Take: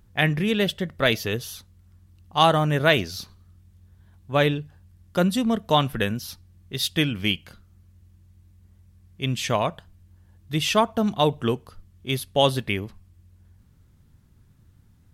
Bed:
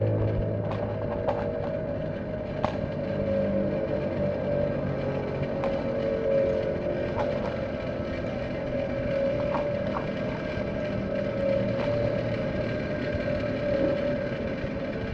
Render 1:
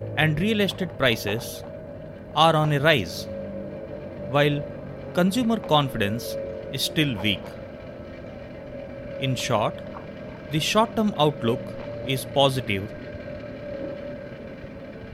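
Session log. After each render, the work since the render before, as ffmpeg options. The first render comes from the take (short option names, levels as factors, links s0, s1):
-filter_complex "[1:a]volume=0.422[s0];[0:a][s0]amix=inputs=2:normalize=0"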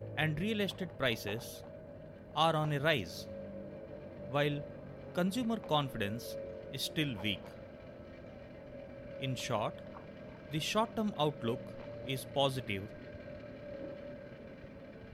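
-af "volume=0.251"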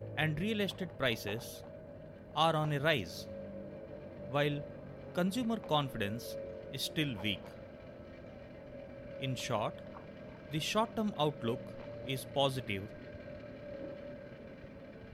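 -af anull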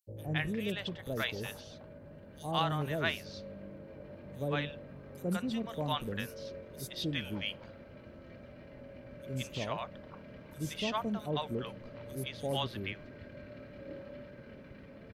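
-filter_complex "[0:a]acrossover=split=650|6000[s0][s1][s2];[s0]adelay=70[s3];[s1]adelay=170[s4];[s3][s4][s2]amix=inputs=3:normalize=0"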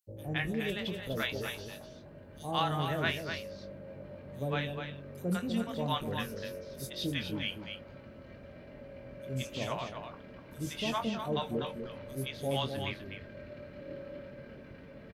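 -filter_complex "[0:a]asplit=2[s0][s1];[s1]adelay=22,volume=0.398[s2];[s0][s2]amix=inputs=2:normalize=0,aecho=1:1:249:0.447"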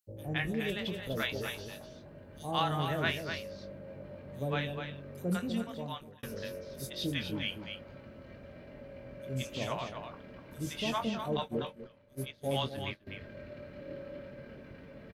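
-filter_complex "[0:a]asettb=1/sr,asplit=3[s0][s1][s2];[s0]atrim=end=11.374[s3];[s1]atrim=start=11.37:end=13.07,asetpts=PTS-STARTPTS,afade=t=in:d=0.004:c=qsin,afade=t=out:st=1.696:d=0.004:c=qsin,agate=range=0.0224:threshold=0.02:ratio=3:release=100:detection=peak[s4];[s2]atrim=start=13.066[s5];[s3][s4]acrossfade=d=0.004:c1=hsin:c2=qsin[s6];[s6][s5]acrossfade=d=0.004:c1=qsin:c2=hsin,asplit=2[s7][s8];[s7]atrim=end=6.23,asetpts=PTS-STARTPTS,afade=t=out:st=5.43:d=0.8[s9];[s8]atrim=start=6.23,asetpts=PTS-STARTPTS,afade=t=in:d=0.004:c=hsin[s10];[s9][s10]concat=n=2:v=0:a=1"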